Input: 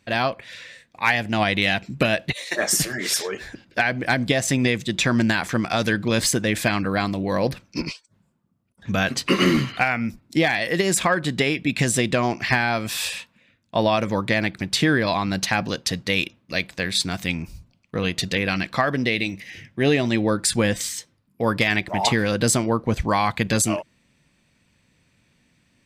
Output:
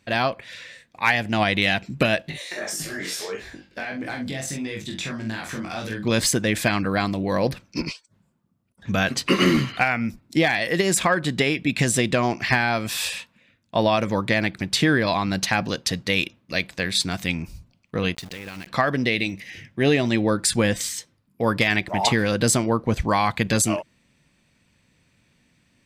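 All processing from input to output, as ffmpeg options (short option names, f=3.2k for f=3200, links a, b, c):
-filter_complex "[0:a]asettb=1/sr,asplit=3[a][b][c];[a]atrim=end=2.224[d];[b]atrim=start=2.22:end=6.06,asetpts=PTS-STARTPTS,afade=t=in:d=0.004:c=qsin,afade=t=out:st=3.836:d=0.004:c=qsin,acompressor=threshold=-24dB:ratio=6:attack=3.2:release=140:knee=1:detection=peak,asplit=2[e][f];[f]adelay=44,volume=-5dB[g];[e][g]amix=inputs=2:normalize=0,atrim=end_sample=169344,flanger=delay=18.5:depth=3.2:speed=1.6[h];[c]atrim=start=6.056[i];[d][h]acrossfade=d=0.004:c1=hsin:c2=qsin[j];[j][i]acrossfade=d=0.004:c1=qsin:c2=hsin,asettb=1/sr,asplit=3[k][l][m];[k]atrim=end=18.154[n];[l]atrim=start=18.15:end=18.67,asetpts=PTS-STARTPTS,afade=t=in:d=0.004:c=qsin,afade=t=out:st=0.516:d=0.004:c=qsin,acompressor=threshold=-33dB:ratio=5:attack=3.2:release=140:knee=1:detection=peak,aeval=exprs='val(0)*gte(abs(val(0)),0.0106)':c=same[o];[m]atrim=start=18.666[p];[n][o]acrossfade=d=0.004:c1=hsin:c2=qsin[q];[q][p]acrossfade=d=0.004:c1=qsin:c2=hsin"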